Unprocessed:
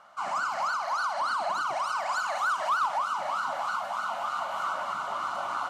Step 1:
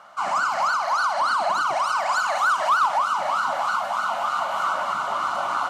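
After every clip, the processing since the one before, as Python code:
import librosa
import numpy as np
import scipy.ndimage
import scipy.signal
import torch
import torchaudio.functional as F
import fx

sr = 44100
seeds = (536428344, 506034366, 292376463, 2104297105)

y = scipy.signal.sosfilt(scipy.signal.butter(2, 76.0, 'highpass', fs=sr, output='sos'), x)
y = y * librosa.db_to_amplitude(7.0)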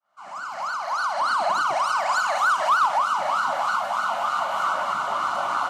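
y = fx.fade_in_head(x, sr, length_s=1.44)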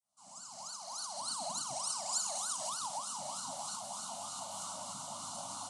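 y = fx.curve_eq(x, sr, hz=(130.0, 270.0, 410.0, 590.0, 910.0, 1600.0, 2300.0, 3700.0, 9800.0, 14000.0), db=(0, -3, -27, -13, -13, -29, -20, -3, 15, -17))
y = y * librosa.db_to_amplitude(-5.0)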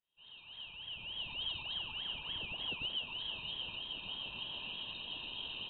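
y = fx.freq_invert(x, sr, carrier_hz=3900)
y = y * librosa.db_to_amplitude(2.5)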